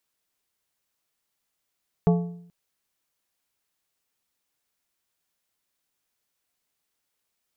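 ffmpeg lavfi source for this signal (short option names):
-f lavfi -i "aevalsrc='0.2*pow(10,-3*t/0.69)*sin(2*PI*173*t)+0.1*pow(10,-3*t/0.524)*sin(2*PI*432.5*t)+0.0501*pow(10,-3*t/0.455)*sin(2*PI*692*t)+0.0251*pow(10,-3*t/0.426)*sin(2*PI*865*t)+0.0126*pow(10,-3*t/0.394)*sin(2*PI*1124.5*t)':d=0.43:s=44100"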